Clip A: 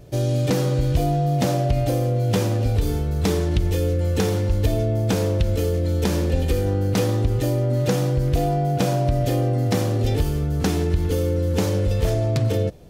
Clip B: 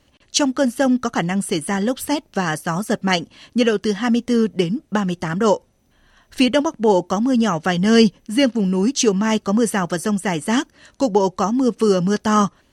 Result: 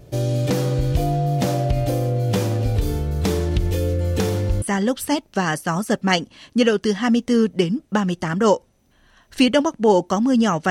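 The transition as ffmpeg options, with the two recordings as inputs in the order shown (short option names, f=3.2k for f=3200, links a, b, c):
-filter_complex "[0:a]apad=whole_dur=10.7,atrim=end=10.7,atrim=end=4.622[a];[1:a]atrim=start=1.618:end=7.7[b];[a][b]acrossfade=d=0.004:c1=hsin:c2=hsin"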